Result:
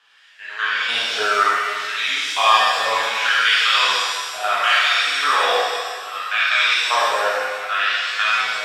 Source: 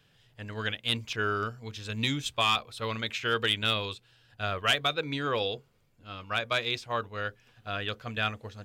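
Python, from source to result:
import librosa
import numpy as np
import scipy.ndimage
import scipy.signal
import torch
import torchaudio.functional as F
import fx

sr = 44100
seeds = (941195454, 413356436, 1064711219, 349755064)

p1 = fx.spec_steps(x, sr, hold_ms=100)
p2 = scipy.signal.sosfilt(scipy.signal.butter(2, 8000.0, 'lowpass', fs=sr, output='sos'), p1)
p3 = fx.over_compress(p2, sr, threshold_db=-32.0, ratio=-1.0)
p4 = p2 + (p3 * 10.0 ** (-1.0 / 20.0))
p5 = fx.filter_lfo_highpass(p4, sr, shape='sine', hz=0.66, low_hz=610.0, high_hz=1700.0, q=2.4)
p6 = fx.rev_shimmer(p5, sr, seeds[0], rt60_s=1.7, semitones=7, shimmer_db=-8, drr_db=-8.5)
y = p6 * 10.0 ** (-1.0 / 20.0)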